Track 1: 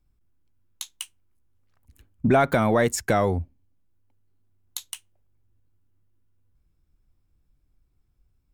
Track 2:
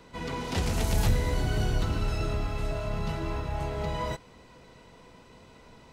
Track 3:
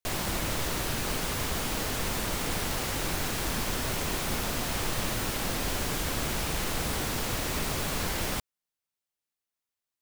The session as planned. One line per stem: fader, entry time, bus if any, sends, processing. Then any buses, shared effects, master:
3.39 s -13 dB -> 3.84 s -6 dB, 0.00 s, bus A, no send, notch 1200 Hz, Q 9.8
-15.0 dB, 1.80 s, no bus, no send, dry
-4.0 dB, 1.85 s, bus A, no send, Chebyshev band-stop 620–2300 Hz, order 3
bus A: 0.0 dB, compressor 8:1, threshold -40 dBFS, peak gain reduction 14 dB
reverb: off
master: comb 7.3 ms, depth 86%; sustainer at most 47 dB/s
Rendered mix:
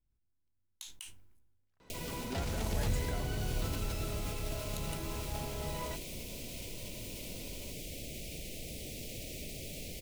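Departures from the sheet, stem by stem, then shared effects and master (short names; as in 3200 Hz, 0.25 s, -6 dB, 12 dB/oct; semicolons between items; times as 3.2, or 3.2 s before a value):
stem 2 -15.0 dB -> -9.0 dB; master: missing comb 7.3 ms, depth 86%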